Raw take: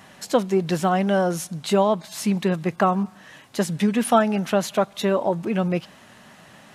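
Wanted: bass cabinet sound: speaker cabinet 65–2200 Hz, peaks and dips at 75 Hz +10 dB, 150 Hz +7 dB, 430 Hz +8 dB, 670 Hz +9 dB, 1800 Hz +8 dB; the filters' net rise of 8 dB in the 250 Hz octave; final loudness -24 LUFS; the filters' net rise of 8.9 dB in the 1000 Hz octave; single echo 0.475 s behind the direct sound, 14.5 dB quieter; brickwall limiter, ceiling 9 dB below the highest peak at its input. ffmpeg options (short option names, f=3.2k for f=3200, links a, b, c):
-af "equalizer=f=250:t=o:g=8.5,equalizer=f=1k:t=o:g=5.5,alimiter=limit=-9dB:level=0:latency=1,highpass=f=65:w=0.5412,highpass=f=65:w=1.3066,equalizer=f=75:t=q:w=4:g=10,equalizer=f=150:t=q:w=4:g=7,equalizer=f=430:t=q:w=4:g=8,equalizer=f=670:t=q:w=4:g=9,equalizer=f=1.8k:t=q:w=4:g=8,lowpass=f=2.2k:w=0.5412,lowpass=f=2.2k:w=1.3066,aecho=1:1:475:0.188,volume=-7dB"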